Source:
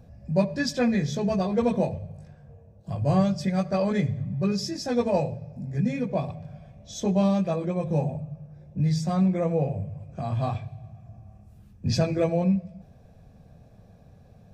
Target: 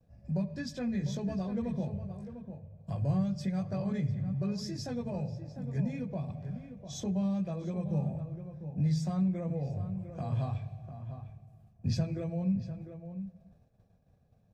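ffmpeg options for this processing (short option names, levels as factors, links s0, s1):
-filter_complex "[0:a]agate=range=0.0224:threshold=0.00794:ratio=3:detection=peak,acrossover=split=200[s0][s1];[s1]acompressor=threshold=0.0178:ratio=6[s2];[s0][s2]amix=inputs=2:normalize=0,asplit=2[s3][s4];[s4]adelay=699.7,volume=0.316,highshelf=f=4000:g=-15.7[s5];[s3][s5]amix=inputs=2:normalize=0,volume=0.631"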